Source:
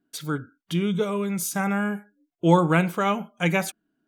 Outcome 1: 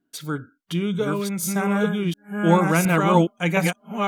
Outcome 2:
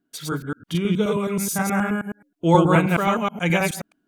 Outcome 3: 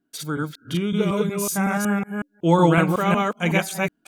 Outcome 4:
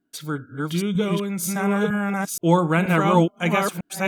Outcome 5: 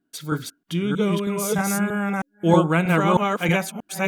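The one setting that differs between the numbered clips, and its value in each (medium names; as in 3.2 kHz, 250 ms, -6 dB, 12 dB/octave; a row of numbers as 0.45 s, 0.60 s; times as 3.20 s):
chunks repeated in reverse, time: 713 ms, 106 ms, 185 ms, 476 ms, 317 ms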